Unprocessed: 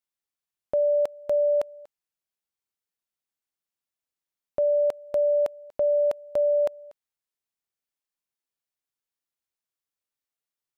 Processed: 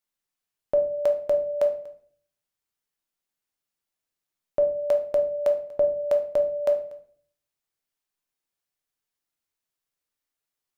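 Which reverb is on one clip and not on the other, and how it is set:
rectangular room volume 71 cubic metres, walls mixed, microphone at 0.43 metres
level +2.5 dB

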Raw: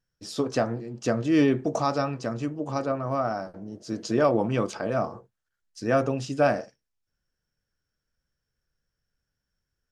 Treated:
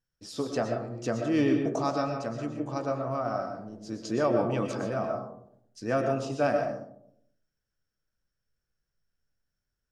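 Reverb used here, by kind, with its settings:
comb and all-pass reverb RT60 0.72 s, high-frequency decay 0.3×, pre-delay 80 ms, DRR 4 dB
level −5 dB

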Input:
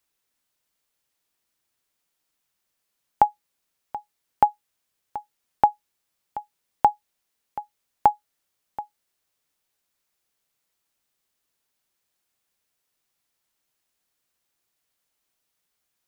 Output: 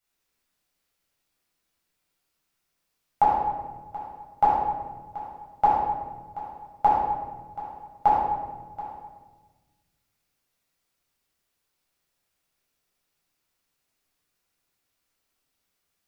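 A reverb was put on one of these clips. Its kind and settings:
rectangular room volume 950 cubic metres, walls mixed, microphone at 7.1 metres
level −10.5 dB

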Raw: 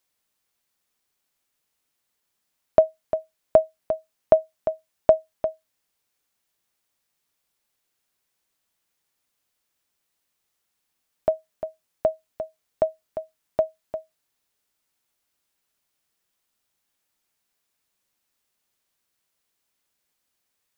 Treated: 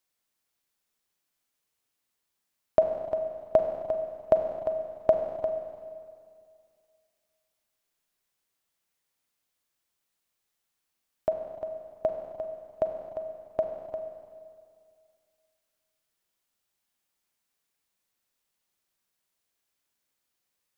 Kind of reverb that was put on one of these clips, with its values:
four-comb reverb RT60 2.2 s, combs from 33 ms, DRR 4.5 dB
level −5 dB

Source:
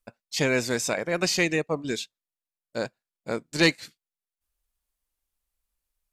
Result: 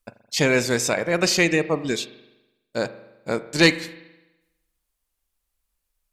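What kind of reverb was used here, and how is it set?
spring reverb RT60 1 s, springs 41 ms, chirp 40 ms, DRR 13.5 dB
level +4.5 dB

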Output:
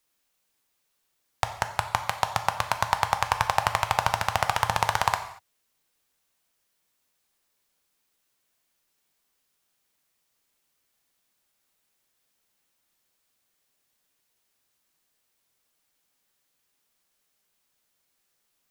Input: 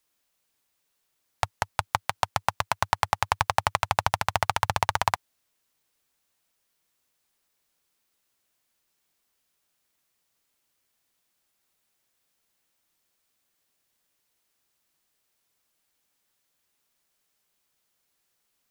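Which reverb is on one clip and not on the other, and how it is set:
reverb whose tail is shaped and stops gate 260 ms falling, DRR 7 dB

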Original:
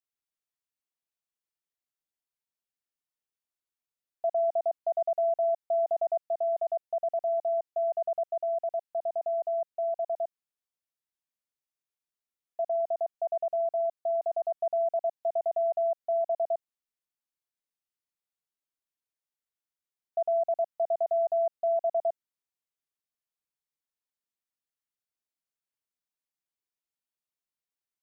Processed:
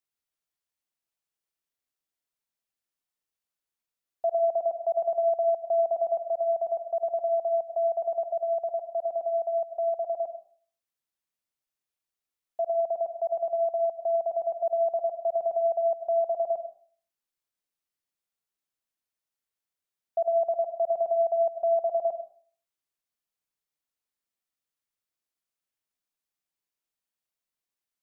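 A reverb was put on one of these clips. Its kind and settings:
comb and all-pass reverb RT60 0.47 s, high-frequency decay 0.6×, pre-delay 50 ms, DRR 10 dB
level +2 dB

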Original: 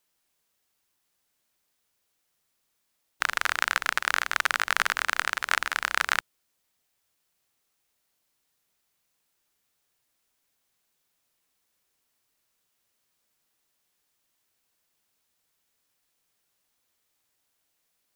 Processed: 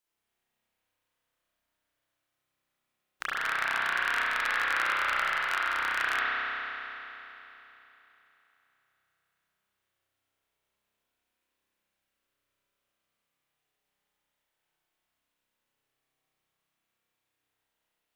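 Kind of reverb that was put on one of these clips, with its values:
spring reverb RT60 3.4 s, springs 31 ms, chirp 65 ms, DRR −9 dB
level −11 dB

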